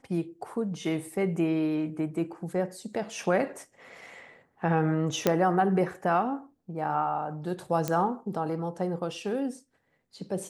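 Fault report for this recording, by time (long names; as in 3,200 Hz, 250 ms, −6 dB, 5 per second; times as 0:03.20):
0:05.27: click −8 dBFS
0:07.88: click −14 dBFS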